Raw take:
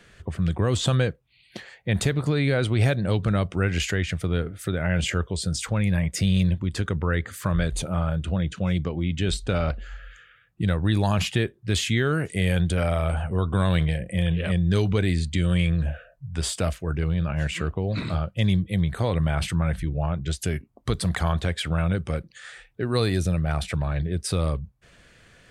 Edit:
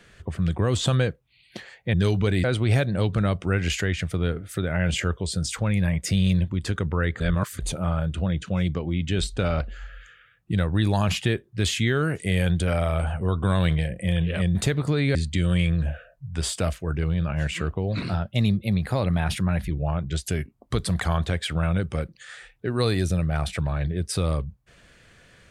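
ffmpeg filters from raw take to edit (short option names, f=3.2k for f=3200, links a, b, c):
-filter_complex "[0:a]asplit=9[a][b][c][d][e][f][g][h][i];[a]atrim=end=1.942[j];[b]atrim=start=14.648:end=15.152[k];[c]atrim=start=2.538:end=7.302[l];[d]atrim=start=7.298:end=7.692,asetpts=PTS-STARTPTS,areverse[m];[e]atrim=start=7.688:end=14.652[n];[f]atrim=start=1.938:end=2.542[o];[g]atrim=start=15.148:end=18.024[p];[h]atrim=start=18.02:end=19.86,asetpts=PTS-STARTPTS,asetrate=48069,aresample=44100,atrim=end_sample=74444,asetpts=PTS-STARTPTS[q];[i]atrim=start=19.856[r];[j][k]acrossfade=d=0.004:c1=hsin:c2=hsin[s];[s][l]acrossfade=d=0.004:c1=hsin:c2=hsin[t];[t][m]acrossfade=d=0.004:c1=hsin:c2=hsin[u];[u][n]acrossfade=d=0.004:c1=hsin:c2=hsin[v];[v][o]acrossfade=d=0.004:c1=hsin:c2=hsin[w];[w][p]acrossfade=d=0.004:c1=hsin:c2=hsin[x];[x][q]acrossfade=d=0.004:c1=hsin:c2=hsin[y];[y][r]acrossfade=d=0.004:c1=hsin:c2=hsin"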